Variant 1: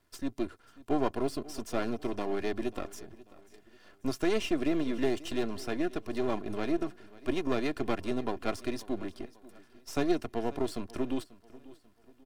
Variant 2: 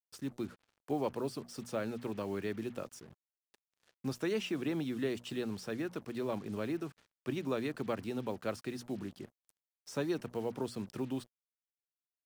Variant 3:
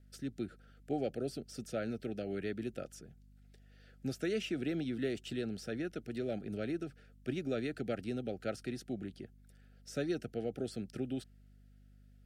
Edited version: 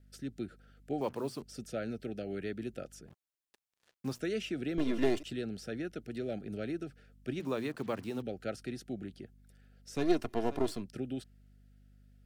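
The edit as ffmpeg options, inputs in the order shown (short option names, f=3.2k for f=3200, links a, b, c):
-filter_complex "[1:a]asplit=3[a][b][c];[0:a]asplit=2[d][e];[2:a]asplit=6[f][g][h][i][j][k];[f]atrim=end=1.012[l];[a]atrim=start=1.008:end=1.422[m];[g]atrim=start=1.418:end=3.082[n];[b]atrim=start=3.078:end=4.202[o];[h]atrim=start=4.198:end=4.782[p];[d]atrim=start=4.778:end=5.232[q];[i]atrim=start=5.228:end=7.402[r];[c]atrim=start=7.398:end=8.222[s];[j]atrim=start=8.218:end=10.08[t];[e]atrim=start=9.92:end=10.86[u];[k]atrim=start=10.7[v];[l][m]acrossfade=d=0.004:c1=hsin:c2=hsin[w];[w][n]acrossfade=d=0.004:c1=hsin:c2=hsin[x];[x][o]acrossfade=d=0.004:c1=hsin:c2=hsin[y];[y][p]acrossfade=d=0.004:c1=hsin:c2=hsin[z];[z][q]acrossfade=d=0.004:c1=hsin:c2=hsin[aa];[aa][r]acrossfade=d=0.004:c1=hsin:c2=hsin[ab];[ab][s]acrossfade=d=0.004:c1=hsin:c2=hsin[ac];[ac][t]acrossfade=d=0.004:c1=hsin:c2=hsin[ad];[ad][u]acrossfade=d=0.16:c1=tri:c2=tri[ae];[ae][v]acrossfade=d=0.16:c1=tri:c2=tri"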